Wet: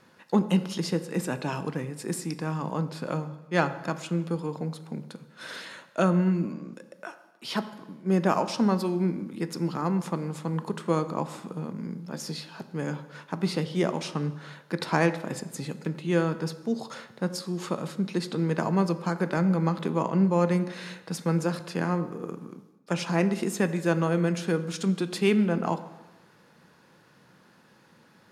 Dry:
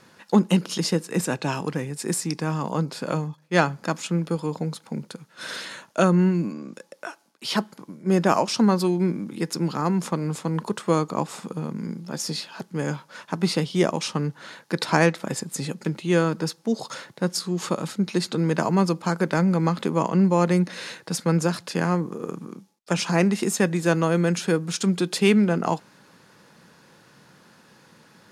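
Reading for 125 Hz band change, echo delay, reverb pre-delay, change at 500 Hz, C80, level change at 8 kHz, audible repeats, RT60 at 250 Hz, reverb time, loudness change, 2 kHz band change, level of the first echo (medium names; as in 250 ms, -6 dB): -3.5 dB, no echo, 7 ms, -4.0 dB, 15.0 dB, -9.0 dB, no echo, 1.1 s, 1.1 s, -4.0 dB, -5.0 dB, no echo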